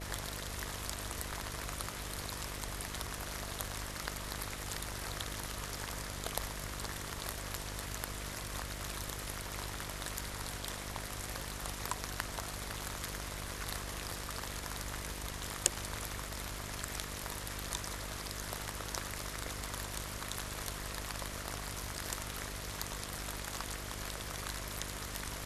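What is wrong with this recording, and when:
buzz 50 Hz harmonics 13 -46 dBFS

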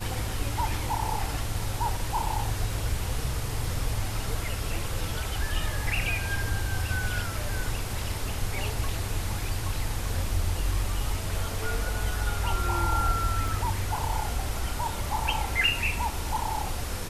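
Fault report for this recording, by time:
13.48 s: dropout 2.1 ms

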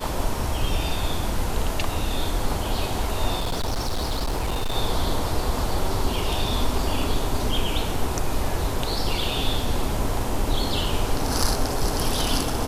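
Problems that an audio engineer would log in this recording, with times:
3.39–4.75 s: clipped -21 dBFS

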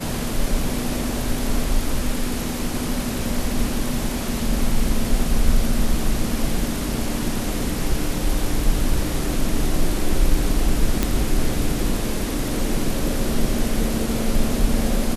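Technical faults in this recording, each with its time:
11.03 s: pop

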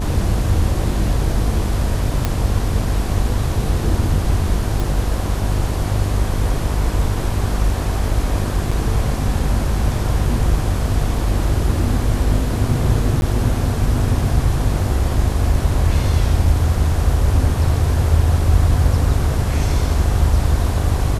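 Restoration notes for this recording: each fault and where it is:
buzz 50 Hz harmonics 17 -22 dBFS
2.25 s: pop -5 dBFS
4.80 s: pop
8.71 s: dropout 4.9 ms
13.21–13.22 s: dropout 11 ms

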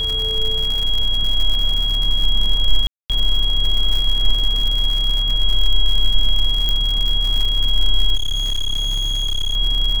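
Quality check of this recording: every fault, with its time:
crackle 130 per s -21 dBFS
whine 3.3 kHz -19 dBFS
2.87–3.10 s: dropout 227 ms
6.69 s: pop -7 dBFS
8.15–9.56 s: clipped -16.5 dBFS

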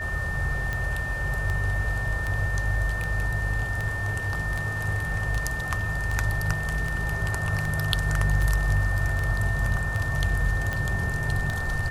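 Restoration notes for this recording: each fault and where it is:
tick 78 rpm -16 dBFS
whine 1.8 kHz -30 dBFS

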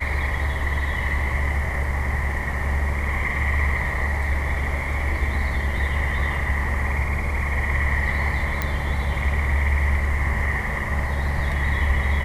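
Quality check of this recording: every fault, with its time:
8.62 s: pop -9 dBFS

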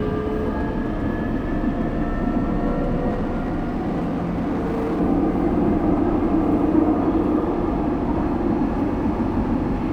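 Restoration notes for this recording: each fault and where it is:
3.09–5.01 s: clipped -19.5 dBFS

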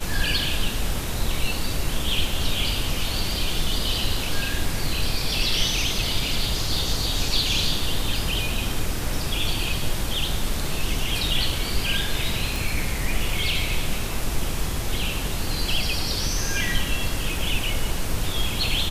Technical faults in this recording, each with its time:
12.56 s: pop

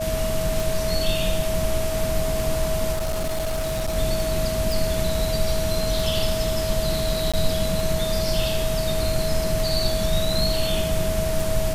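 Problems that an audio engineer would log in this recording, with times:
tick 33 1/3 rpm
whine 640 Hz -25 dBFS
2.92–3.97 s: clipped -21 dBFS
4.72 s: pop
7.32–7.34 s: dropout 16 ms

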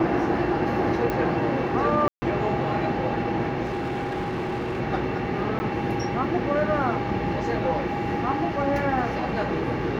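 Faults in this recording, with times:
1.10 s: pop -14 dBFS
2.08–2.22 s: dropout 140 ms
3.64–4.81 s: clipped -24.5 dBFS
5.59–5.60 s: dropout 10 ms

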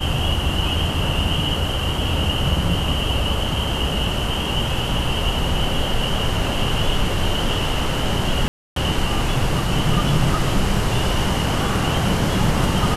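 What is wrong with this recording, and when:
8.48–8.76 s: dropout 283 ms

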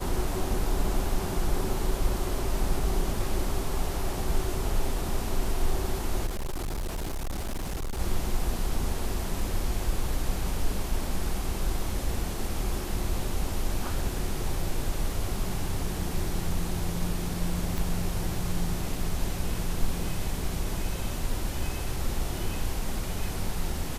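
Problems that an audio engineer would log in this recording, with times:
6.26–8.00 s: clipped -28 dBFS
17.78 s: pop

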